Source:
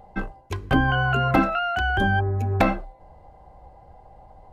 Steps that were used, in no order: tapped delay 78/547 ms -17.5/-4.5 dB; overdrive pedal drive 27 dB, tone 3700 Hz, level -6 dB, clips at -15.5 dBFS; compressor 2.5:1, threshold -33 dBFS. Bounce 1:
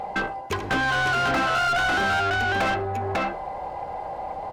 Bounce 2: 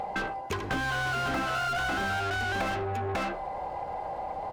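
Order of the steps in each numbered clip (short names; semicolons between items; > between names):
compressor > tapped delay > overdrive pedal; tapped delay > overdrive pedal > compressor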